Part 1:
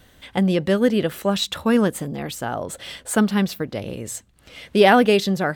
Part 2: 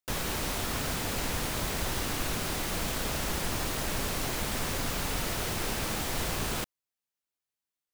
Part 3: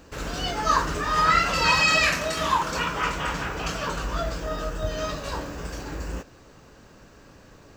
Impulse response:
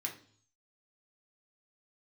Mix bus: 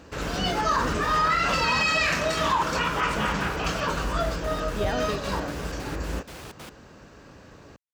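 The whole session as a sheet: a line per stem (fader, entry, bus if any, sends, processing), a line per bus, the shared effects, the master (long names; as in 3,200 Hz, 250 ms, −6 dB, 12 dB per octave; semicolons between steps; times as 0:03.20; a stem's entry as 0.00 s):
−17.0 dB, 0.00 s, no send, no processing
−5.5 dB, 0.05 s, no send, wave folding −28.5 dBFS; gate pattern "x.xx.xx.xx" 188 BPM −60 dB
+2.5 dB, 0.00 s, no send, no processing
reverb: not used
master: high-pass filter 45 Hz; high-shelf EQ 8,600 Hz −10.5 dB; brickwall limiter −14.5 dBFS, peak gain reduction 8 dB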